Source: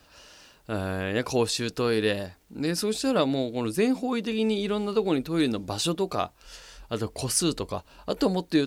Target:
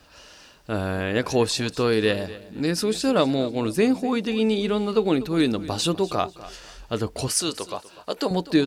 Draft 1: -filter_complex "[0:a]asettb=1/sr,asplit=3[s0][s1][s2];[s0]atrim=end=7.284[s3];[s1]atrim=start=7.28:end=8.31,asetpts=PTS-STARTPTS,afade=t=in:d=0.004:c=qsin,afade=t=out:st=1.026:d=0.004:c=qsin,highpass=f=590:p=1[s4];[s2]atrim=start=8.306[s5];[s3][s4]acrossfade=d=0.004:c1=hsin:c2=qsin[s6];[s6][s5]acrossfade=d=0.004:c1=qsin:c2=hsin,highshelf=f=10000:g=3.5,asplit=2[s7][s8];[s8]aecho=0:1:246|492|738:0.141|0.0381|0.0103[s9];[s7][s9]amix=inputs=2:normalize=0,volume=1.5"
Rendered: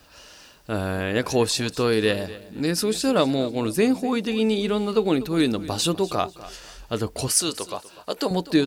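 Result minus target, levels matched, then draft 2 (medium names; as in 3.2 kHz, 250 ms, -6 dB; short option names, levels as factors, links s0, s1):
8 kHz band +3.0 dB
-filter_complex "[0:a]asettb=1/sr,asplit=3[s0][s1][s2];[s0]atrim=end=7.284[s3];[s1]atrim=start=7.28:end=8.31,asetpts=PTS-STARTPTS,afade=t=in:d=0.004:c=qsin,afade=t=out:st=1.026:d=0.004:c=qsin,highpass=f=590:p=1[s4];[s2]atrim=start=8.306[s5];[s3][s4]acrossfade=d=0.004:c1=hsin:c2=qsin[s6];[s6][s5]acrossfade=d=0.004:c1=qsin:c2=hsin,highshelf=f=10000:g=-5.5,asplit=2[s7][s8];[s8]aecho=0:1:246|492|738:0.141|0.0381|0.0103[s9];[s7][s9]amix=inputs=2:normalize=0,volume=1.5"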